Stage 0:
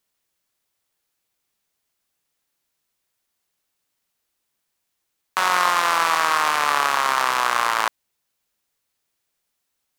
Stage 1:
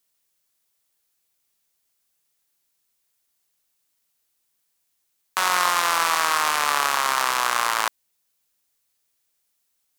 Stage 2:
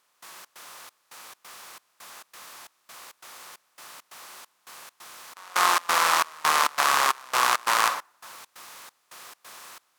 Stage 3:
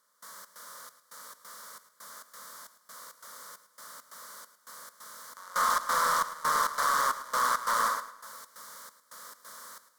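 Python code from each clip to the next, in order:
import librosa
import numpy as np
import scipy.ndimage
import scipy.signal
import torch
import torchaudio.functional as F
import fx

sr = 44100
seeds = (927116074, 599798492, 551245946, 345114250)

y1 = fx.high_shelf(x, sr, hz=4300.0, db=8.5)
y1 = y1 * 10.0 ** (-3.0 / 20.0)
y2 = fx.bin_compress(y1, sr, power=0.4)
y2 = fx.rev_plate(y2, sr, seeds[0], rt60_s=1.1, hf_ratio=0.6, predelay_ms=0, drr_db=4.0)
y2 = fx.step_gate(y2, sr, bpm=135, pattern='..xx.xxx', floor_db=-24.0, edge_ms=4.5)
y2 = y2 * 10.0 ** (-5.0 / 20.0)
y3 = 10.0 ** (-18.0 / 20.0) * np.tanh(y2 / 10.0 ** (-18.0 / 20.0))
y3 = fx.fixed_phaser(y3, sr, hz=520.0, stages=8)
y3 = fx.echo_feedback(y3, sr, ms=108, feedback_pct=37, wet_db=-14)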